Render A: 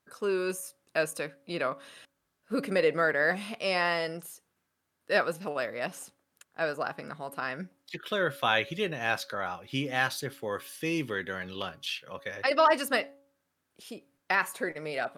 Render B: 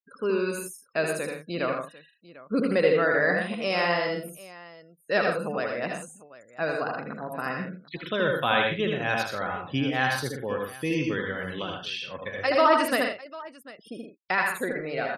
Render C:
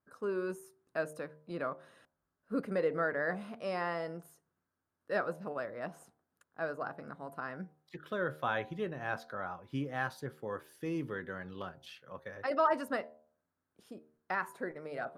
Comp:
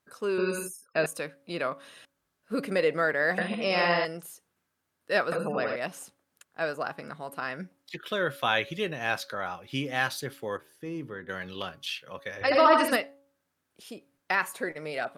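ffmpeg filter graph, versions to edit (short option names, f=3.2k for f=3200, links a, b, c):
-filter_complex "[1:a]asplit=4[a][b][c][d];[0:a]asplit=6[e][f][g][h][i][j];[e]atrim=end=0.382[k];[a]atrim=start=0.378:end=1.062[l];[f]atrim=start=1.058:end=3.382[m];[b]atrim=start=3.378:end=4.052[n];[g]atrim=start=4.048:end=5.322[o];[c]atrim=start=5.318:end=5.762[p];[h]atrim=start=5.758:end=10.572[q];[2:a]atrim=start=10.568:end=11.292[r];[i]atrim=start=11.288:end=12.412[s];[d]atrim=start=12.408:end=12.962[t];[j]atrim=start=12.958[u];[k][l]acrossfade=d=0.004:c1=hsin:c2=hsin[v];[v][m]acrossfade=d=0.004:c1=hsin:c2=hsin[w];[w][n]acrossfade=d=0.004:c1=hsin:c2=hsin[x];[x][o]acrossfade=d=0.004:c1=hsin:c2=hsin[y];[y][p]acrossfade=d=0.004:c1=hsin:c2=hsin[z];[z][q]acrossfade=d=0.004:c1=hsin:c2=hsin[aa];[aa][r]acrossfade=d=0.004:c1=hsin:c2=hsin[ab];[ab][s]acrossfade=d=0.004:c1=hsin:c2=hsin[ac];[ac][t]acrossfade=d=0.004:c1=hsin:c2=hsin[ad];[ad][u]acrossfade=d=0.004:c1=hsin:c2=hsin"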